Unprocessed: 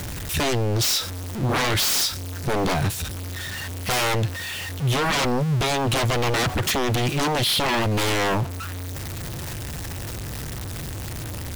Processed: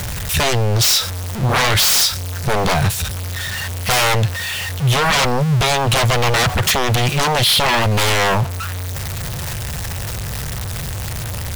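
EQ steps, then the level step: bell 300 Hz -12.5 dB 0.64 oct; +7.5 dB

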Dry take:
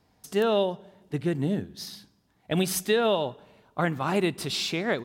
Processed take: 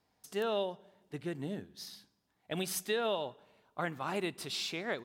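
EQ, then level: low shelf 290 Hz -8 dB; -7.5 dB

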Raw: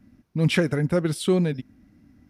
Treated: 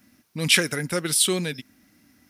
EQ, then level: tilt +4 dB/oct; dynamic EQ 730 Hz, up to -5 dB, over -41 dBFS, Q 0.76; +3.5 dB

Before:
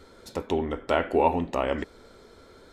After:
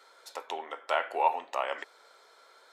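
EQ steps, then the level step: ladder high-pass 580 Hz, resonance 20%; +3.0 dB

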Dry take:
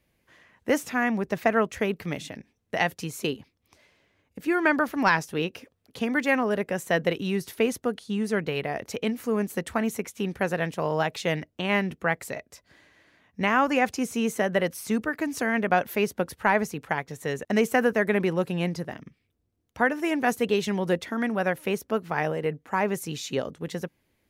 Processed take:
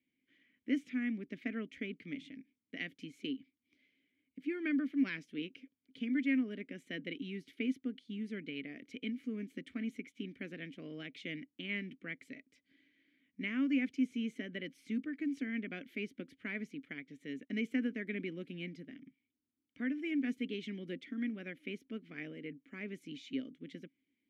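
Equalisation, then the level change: vowel filter i; -1.0 dB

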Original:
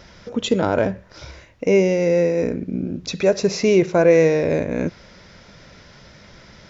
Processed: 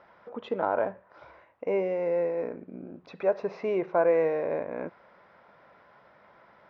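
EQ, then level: band-pass 930 Hz, Q 1.9; air absorption 240 m; notch 920 Hz, Q 24; 0.0 dB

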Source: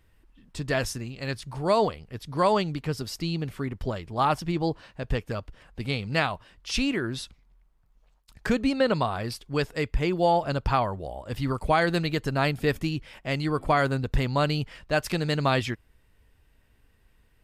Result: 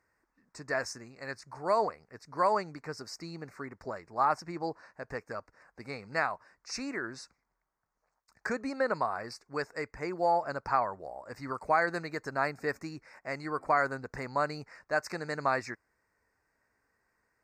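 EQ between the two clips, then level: running mean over 4 samples; HPF 1200 Hz 6 dB/oct; Butterworth band-stop 3200 Hz, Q 0.92; +1.5 dB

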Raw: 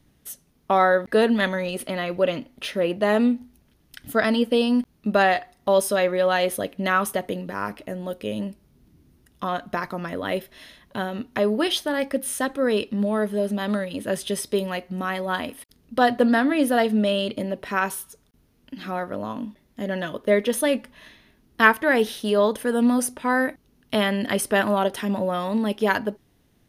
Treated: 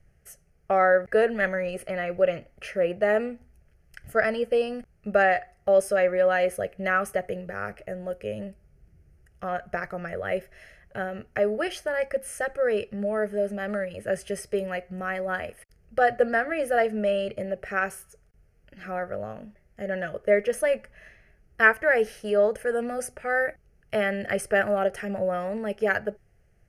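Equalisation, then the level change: air absorption 52 m; low shelf 61 Hz +8.5 dB; fixed phaser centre 1000 Hz, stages 6; 0.0 dB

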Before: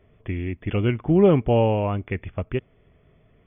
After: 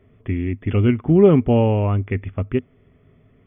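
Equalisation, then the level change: thirty-one-band EQ 100 Hz +9 dB, 160 Hz +5 dB, 250 Hz +11 dB, 400 Hz +5 dB, 1250 Hz +4 dB, 2000 Hz +3 dB; -1.0 dB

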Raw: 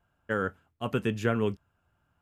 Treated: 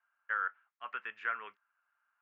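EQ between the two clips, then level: Butterworth band-pass 1600 Hz, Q 1.4; 0.0 dB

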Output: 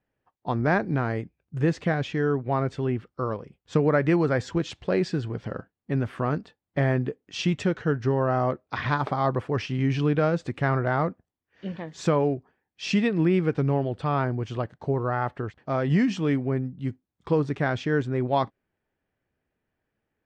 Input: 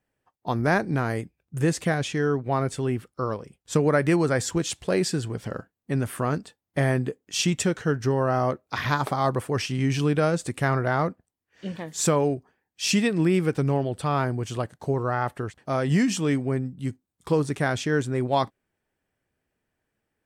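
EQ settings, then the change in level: air absorption 200 m; 0.0 dB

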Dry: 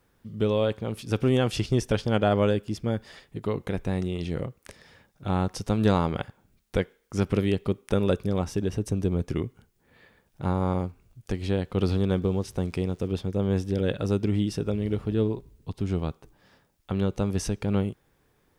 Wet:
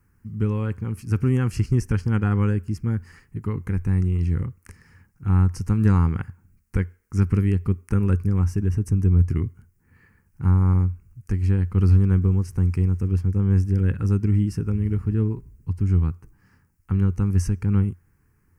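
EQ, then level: tone controls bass +6 dB, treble +1 dB; bell 88 Hz +9 dB 0.27 oct; fixed phaser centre 1500 Hz, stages 4; 0.0 dB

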